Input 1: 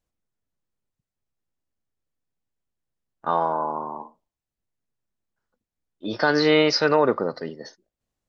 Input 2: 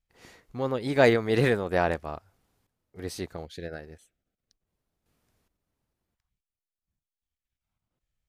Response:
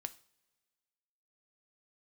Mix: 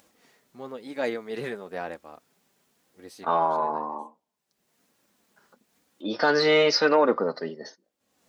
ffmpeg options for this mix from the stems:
-filter_complex "[0:a]acompressor=mode=upward:threshold=-39dB:ratio=2.5,volume=-3.5dB,asplit=2[a][b];[b]volume=-20dB[c];[1:a]volume=-11.5dB[d];[2:a]atrim=start_sample=2205[e];[c][e]afir=irnorm=-1:irlink=0[f];[a][d][f]amix=inputs=3:normalize=0,acontrast=65,flanger=delay=3.6:depth=1.5:regen=-39:speed=1:shape=sinusoidal,highpass=200"

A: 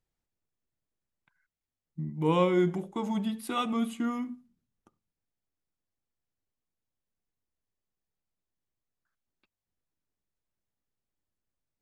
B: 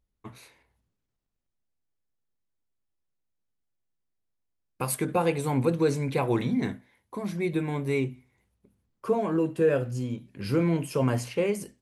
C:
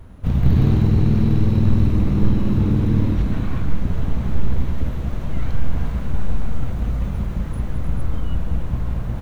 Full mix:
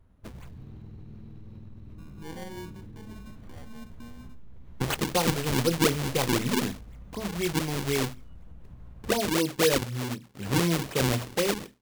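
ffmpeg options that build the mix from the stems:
-filter_complex "[0:a]acrusher=samples=34:mix=1:aa=0.000001,volume=-16.5dB[a];[1:a]acrusher=samples=40:mix=1:aa=0.000001:lfo=1:lforange=64:lforate=4,adynamicequalizer=threshold=0.00891:dfrequency=2200:dqfactor=0.7:tfrequency=2200:tqfactor=0.7:attack=5:release=100:ratio=0.375:range=3:mode=boostabove:tftype=highshelf,volume=-1dB[b];[2:a]alimiter=limit=-12.5dB:level=0:latency=1:release=115,acompressor=threshold=-22dB:ratio=4,volume=-19.5dB[c];[a][b][c]amix=inputs=3:normalize=0"

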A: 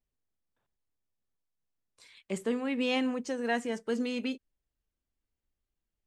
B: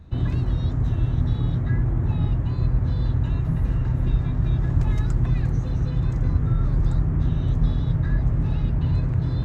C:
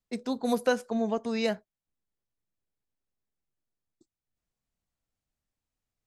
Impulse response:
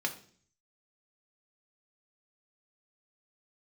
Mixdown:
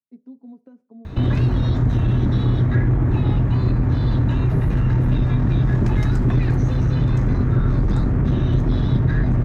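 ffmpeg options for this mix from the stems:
-filter_complex "[1:a]aeval=exprs='0.376*sin(PI/2*2.24*val(0)/0.376)':c=same,adelay=1050,volume=1dB,asplit=2[a][b];[b]volume=-4dB[c];[2:a]aecho=1:1:7.2:0.59,acompressor=threshold=-28dB:ratio=10,bandpass=f=230:t=q:w=2.4:csg=0,volume=-7dB,asplit=2[d][e];[e]volume=-21.5dB[f];[3:a]atrim=start_sample=2205[g];[c][f]amix=inputs=2:normalize=0[h];[h][g]afir=irnorm=-1:irlink=0[i];[a][d][i]amix=inputs=3:normalize=0,acompressor=threshold=-29dB:ratio=1.5"

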